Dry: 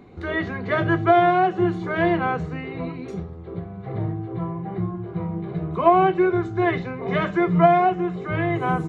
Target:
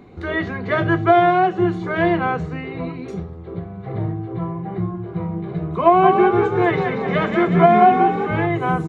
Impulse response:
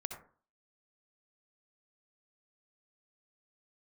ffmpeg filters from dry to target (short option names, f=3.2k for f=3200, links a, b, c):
-filter_complex "[0:a]asplit=3[a][b][c];[a]afade=t=out:st=6.02:d=0.02[d];[b]asplit=7[e][f][g][h][i][j][k];[f]adelay=186,afreqshift=41,volume=-5dB[l];[g]adelay=372,afreqshift=82,volume=-10.8dB[m];[h]adelay=558,afreqshift=123,volume=-16.7dB[n];[i]adelay=744,afreqshift=164,volume=-22.5dB[o];[j]adelay=930,afreqshift=205,volume=-28.4dB[p];[k]adelay=1116,afreqshift=246,volume=-34.2dB[q];[e][l][m][n][o][p][q]amix=inputs=7:normalize=0,afade=t=in:st=6.02:d=0.02,afade=t=out:st=8.46:d=0.02[r];[c]afade=t=in:st=8.46:d=0.02[s];[d][r][s]amix=inputs=3:normalize=0,volume=2.5dB"